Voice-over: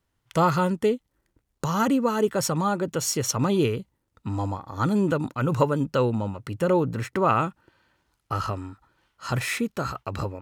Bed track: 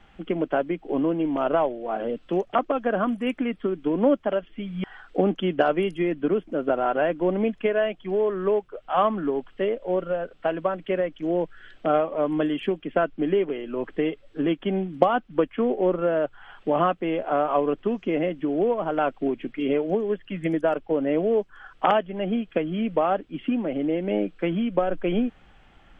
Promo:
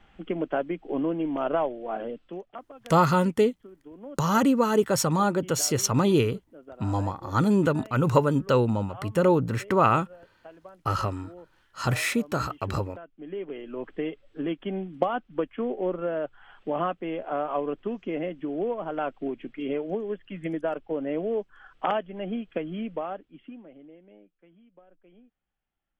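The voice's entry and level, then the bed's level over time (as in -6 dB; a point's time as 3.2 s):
2.55 s, +1.0 dB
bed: 1.98 s -3.5 dB
2.7 s -22 dB
13.07 s -22 dB
13.57 s -6 dB
22.78 s -6 dB
24.39 s -33 dB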